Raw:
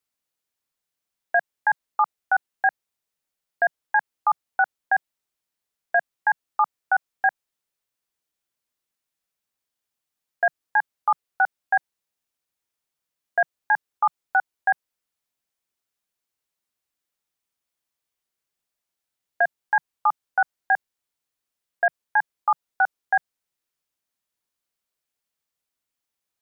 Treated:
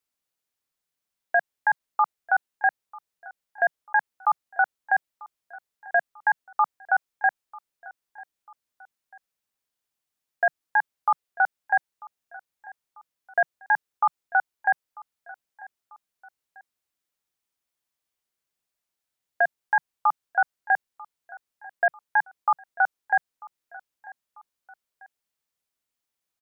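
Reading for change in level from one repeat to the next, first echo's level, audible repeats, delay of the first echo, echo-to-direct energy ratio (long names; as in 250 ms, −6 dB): −6.5 dB, −21.5 dB, 2, 943 ms, −20.5 dB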